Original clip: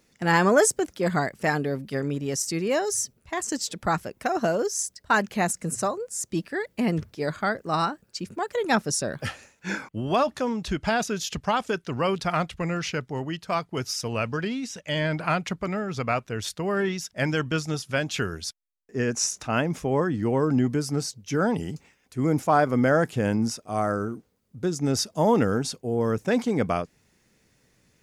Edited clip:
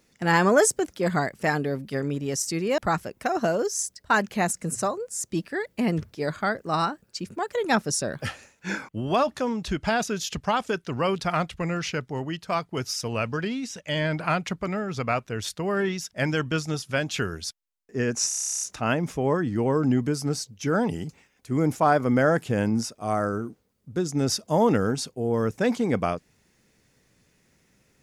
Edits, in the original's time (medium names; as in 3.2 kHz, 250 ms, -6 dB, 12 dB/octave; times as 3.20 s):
2.78–3.78 s: delete
19.28 s: stutter 0.03 s, 12 plays